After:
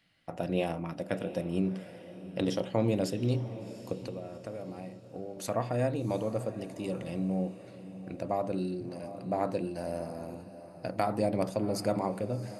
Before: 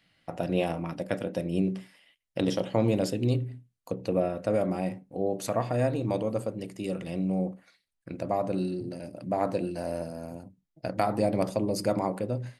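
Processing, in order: 4.03–5.37 s: compression 6:1, threshold -35 dBFS, peak gain reduction 14 dB; echo that smears into a reverb 736 ms, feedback 43%, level -14 dB; trim -3 dB

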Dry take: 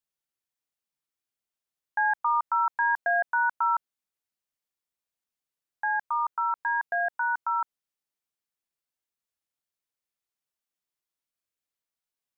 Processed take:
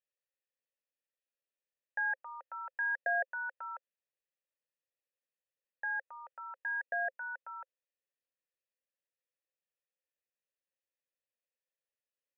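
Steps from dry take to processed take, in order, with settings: vowel filter e; trim +6.5 dB

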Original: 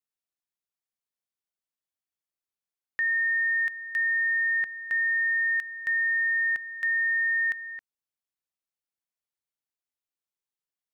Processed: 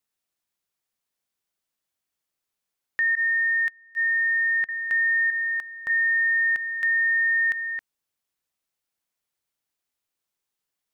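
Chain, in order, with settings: 3.15–4.69 s: gate -25 dBFS, range -23 dB; 5.30–5.90 s: resonant high shelf 1.5 kHz -9 dB, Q 1.5; peak limiter -27 dBFS, peak gain reduction 5 dB; trim +8.5 dB

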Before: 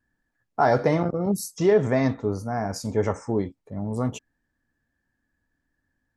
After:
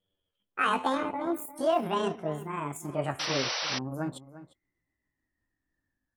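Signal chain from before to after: pitch bend over the whole clip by +11.5 st ending unshifted; echo from a far wall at 60 m, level -15 dB; painted sound noise, 3.19–3.79 s, 450–6000 Hz -26 dBFS; trim -6 dB

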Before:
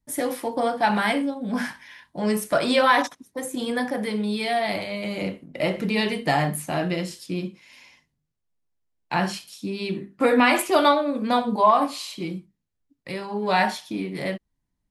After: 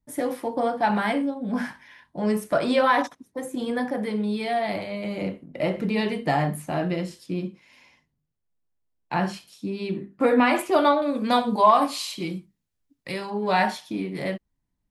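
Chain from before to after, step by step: treble shelf 2 kHz -8.5 dB, from 11.02 s +3.5 dB, from 13.30 s -3.5 dB

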